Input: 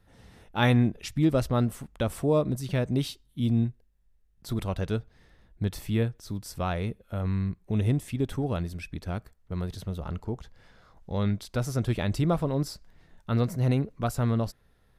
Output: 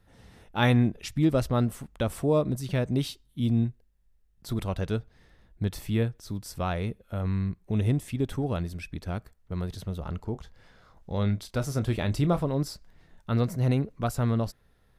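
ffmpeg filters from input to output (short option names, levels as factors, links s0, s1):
-filter_complex "[0:a]asettb=1/sr,asplit=3[s0][s1][s2];[s0]atrim=end=10.324[s3];[s1]atrim=start=10.32:end=12.43,asetpts=PTS-STARTPTS,afade=t=in:d=0.004:c=qsin,afade=t=out:st=2.106:d=0.004:c=qsin,asplit=2[s4][s5];[s5]adelay=28,volume=0.251[s6];[s4][s6]amix=inputs=2:normalize=0,atrim=end_sample=93051[s7];[s2]atrim=start=12.426[s8];[s3][s7]acrossfade=d=0.004:c1=hsin:c2=qsin[s9];[s9][s8]acrossfade=d=0.004:c1=qsin:c2=hsin"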